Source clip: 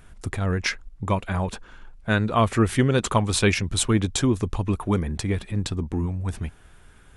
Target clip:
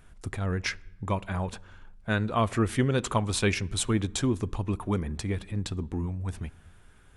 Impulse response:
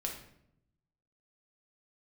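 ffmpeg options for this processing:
-filter_complex "[0:a]asplit=2[link_01][link_02];[1:a]atrim=start_sample=2205,asetrate=30870,aresample=44100,highshelf=frequency=5100:gain=-9[link_03];[link_02][link_03]afir=irnorm=-1:irlink=0,volume=-21.5dB[link_04];[link_01][link_04]amix=inputs=2:normalize=0,volume=-6dB"

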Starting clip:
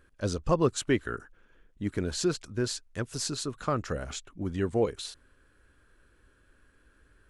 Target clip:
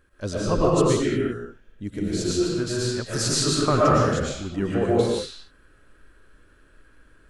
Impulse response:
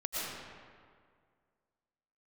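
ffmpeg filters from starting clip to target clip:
-filter_complex "[0:a]asettb=1/sr,asplit=3[link_01][link_02][link_03];[link_01]atrim=end=0.714[link_04];[link_02]atrim=start=0.71:end=2.31,asetpts=PTS-STARTPTS,afade=type=in:duration=0.004:curve=qsin,afade=type=out:start_time=1.596:duration=0.004:curve=qsin,equalizer=frequency=1200:width=0.78:gain=-9[link_05];[link_03]atrim=start=2.306[link_06];[link_04][link_05]acrossfade=duration=0.004:curve1=hsin:curve2=qsin[link_07];[link_07][link_06]acrossfade=duration=0.004:curve1=qsin:curve2=hsin,asettb=1/sr,asplit=3[link_08][link_09][link_10];[link_08]atrim=end=3.054[link_11];[link_09]atrim=start=3.05:end=3.98,asetpts=PTS-STARTPTS,afade=type=in:duration=0.004:curve=qsin,afade=type=out:start_time=0.926:duration=0.004:curve=qsin,acontrast=47[link_12];[link_10]atrim=start=3.976[link_13];[link_11][link_12]acrossfade=duration=0.004:curve1=hsin:curve2=qsin[link_14];[link_14][link_13]acrossfade=duration=0.004:curve1=qsin:curve2=hsin[link_15];[1:a]atrim=start_sample=2205,afade=type=out:start_time=0.42:duration=0.01,atrim=end_sample=18963[link_16];[link_15][link_16]afir=irnorm=-1:irlink=0,volume=2.5dB"

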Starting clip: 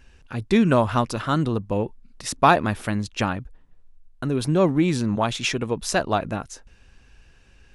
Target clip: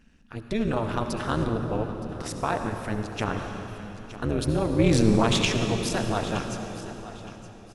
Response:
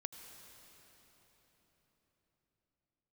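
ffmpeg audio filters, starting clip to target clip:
-filter_complex "[0:a]dynaudnorm=framelen=150:gausssize=11:maxgain=11.5dB,alimiter=limit=-9dB:level=0:latency=1:release=78,asettb=1/sr,asplit=3[link_01][link_02][link_03];[link_01]atrim=end=4.794[link_04];[link_02]atrim=start=4.79:end=5.45,asetpts=PTS-STARTPTS,afade=type=in:duration=0.004:curve=qsin,afade=type=out:start_time=0.656:duration=0.004:curve=qsin,acontrast=64[link_05];[link_03]atrim=start=5.446[link_06];[link_04][link_05]acrossfade=duration=0.004:curve1=hsin:curve2=qsin[link_07];[link_07][link_06]acrossfade=duration=0.004:curve1=qsin:curve2=hsin,tremolo=f=220:d=0.947,aecho=1:1:918|1836|2754:0.168|0.042|0.0105[link_08];[1:a]atrim=start_sample=2205,asetrate=52920,aresample=44100[link_09];[link_08][link_09]afir=irnorm=-1:irlink=0,asplit=3[link_10][link_11][link_12];[link_10]afade=type=out:start_time=1.44:duration=0.02[link_13];[link_11]adynamicequalizer=threshold=0.00447:dfrequency=2500:dqfactor=0.7:tfrequency=2500:tqfactor=0.7:attack=5:release=100:ratio=0.375:range=2.5:mode=cutabove:tftype=highshelf,afade=type=in:start_time=1.44:duration=0.02,afade=type=out:start_time=3.37:duration=0.02[link_14];[link_12]afade=type=in:start_time=3.37:duration=0.02[link_15];[link_13][link_14][link_15]amix=inputs=3:normalize=0,volume=1.5dB"

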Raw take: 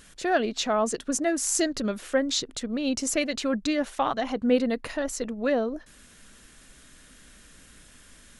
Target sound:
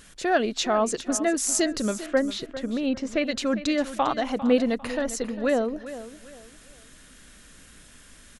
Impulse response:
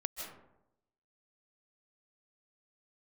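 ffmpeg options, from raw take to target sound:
-filter_complex "[0:a]asettb=1/sr,asplit=3[link_01][link_02][link_03];[link_01]atrim=end=2.064[link_04];[link_02]atrim=start=2.06:end=3.27,asetpts=PTS-STARTPTS,afade=type=in:duration=0.004:curve=qsin,afade=type=out:start_time=1.206:duration=0.004:curve=qsin,lowpass=2700[link_05];[link_03]atrim=start=3.266[link_06];[link_04][link_05]acrossfade=duration=0.004:curve1=hsin:curve2=qsin[link_07];[link_07][link_06]acrossfade=duration=0.004:curve1=qsin:curve2=hsin,aecho=1:1:400|800|1200:0.2|0.0619|0.0192,volume=1.5dB"

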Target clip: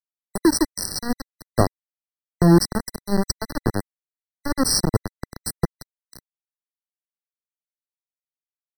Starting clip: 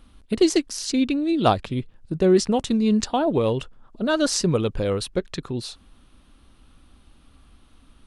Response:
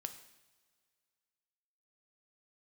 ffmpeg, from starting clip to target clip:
-filter_complex "[0:a]aexciter=amount=8.5:drive=1.6:freq=5900,asplit=2[link_01][link_02];[link_02]acompressor=threshold=-28dB:ratio=12,volume=-2dB[link_03];[link_01][link_03]amix=inputs=2:normalize=0,aeval=exprs='val(0)*gte(abs(val(0)),0.237)':channel_layout=same,acrossover=split=340|5100[link_04][link_05][link_06];[link_04]dynaudnorm=framelen=290:gausssize=3:maxgain=14.5dB[link_07];[link_07][link_05][link_06]amix=inputs=3:normalize=0,asetrate=40517,aresample=44100,afftfilt=real='re*eq(mod(floor(b*sr/1024/2000),2),0)':imag='im*eq(mod(floor(b*sr/1024/2000),2),0)':win_size=1024:overlap=0.75,volume=-4dB"

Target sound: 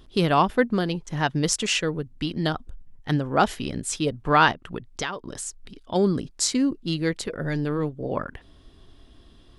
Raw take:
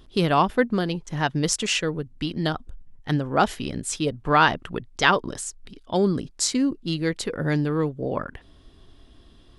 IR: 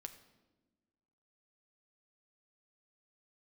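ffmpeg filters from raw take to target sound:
-filter_complex "[0:a]asplit=3[link_01][link_02][link_03];[link_01]afade=type=out:start_time=4.51:duration=0.02[link_04];[link_02]acompressor=threshold=-27dB:ratio=8,afade=type=in:start_time=4.51:duration=0.02,afade=type=out:start_time=5.94:duration=0.02[link_05];[link_03]afade=type=in:start_time=5.94:duration=0.02[link_06];[link_04][link_05][link_06]amix=inputs=3:normalize=0,asplit=3[link_07][link_08][link_09];[link_07]afade=type=out:start_time=7.19:duration=0.02[link_10];[link_08]tremolo=f=150:d=0.519,afade=type=in:start_time=7.19:duration=0.02,afade=type=out:start_time=8.09:duration=0.02[link_11];[link_09]afade=type=in:start_time=8.09:duration=0.02[link_12];[link_10][link_11][link_12]amix=inputs=3:normalize=0"

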